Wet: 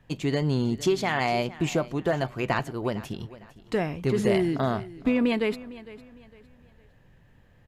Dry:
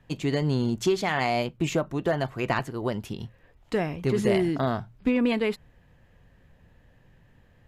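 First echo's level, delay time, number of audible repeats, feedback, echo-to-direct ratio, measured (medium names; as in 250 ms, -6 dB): -18.0 dB, 456 ms, 2, 33%, -17.5 dB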